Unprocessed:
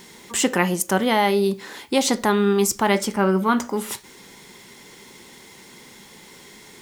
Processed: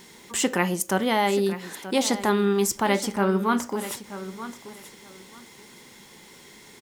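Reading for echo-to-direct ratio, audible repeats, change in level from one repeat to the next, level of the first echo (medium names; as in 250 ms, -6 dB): -13.5 dB, 2, -14.0 dB, -13.5 dB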